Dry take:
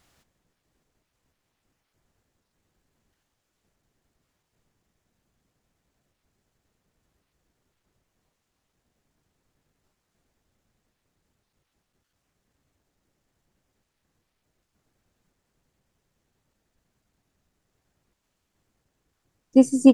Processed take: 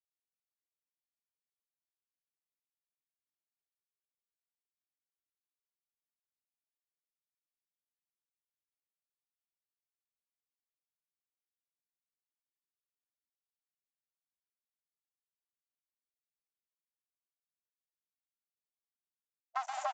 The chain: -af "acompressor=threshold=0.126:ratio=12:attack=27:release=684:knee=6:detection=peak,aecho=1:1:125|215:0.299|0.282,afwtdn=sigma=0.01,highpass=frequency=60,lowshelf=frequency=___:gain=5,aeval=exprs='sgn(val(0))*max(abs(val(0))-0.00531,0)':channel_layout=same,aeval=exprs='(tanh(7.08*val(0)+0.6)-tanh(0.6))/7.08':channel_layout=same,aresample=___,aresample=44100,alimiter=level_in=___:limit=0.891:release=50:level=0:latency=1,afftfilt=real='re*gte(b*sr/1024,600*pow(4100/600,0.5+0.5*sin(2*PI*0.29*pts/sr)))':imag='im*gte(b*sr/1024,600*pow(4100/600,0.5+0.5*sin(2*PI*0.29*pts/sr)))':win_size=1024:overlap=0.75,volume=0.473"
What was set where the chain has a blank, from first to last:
94, 16000, 8.41